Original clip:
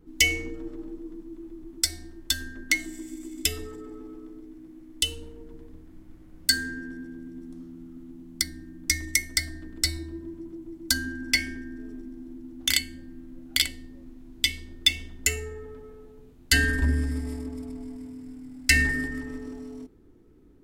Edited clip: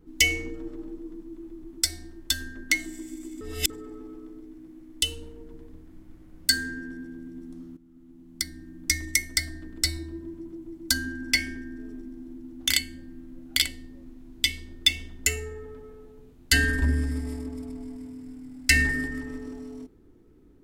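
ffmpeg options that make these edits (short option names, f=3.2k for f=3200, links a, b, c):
-filter_complex "[0:a]asplit=4[a][b][c][d];[a]atrim=end=3.412[e];[b]atrim=start=3.408:end=3.702,asetpts=PTS-STARTPTS,areverse[f];[c]atrim=start=3.698:end=7.77,asetpts=PTS-STARTPTS,afade=t=out:st=4.068:d=0.004:c=hsin:silence=0.188365[g];[d]atrim=start=7.77,asetpts=PTS-STARTPTS,afade=t=in:d=1.02:silence=0.188365[h];[e][f]acrossfade=d=0.004:c1=hsin:c2=hsin[i];[g][h]concat=n=2:v=0:a=1[j];[i][j]acrossfade=d=0.004:c1=hsin:c2=hsin"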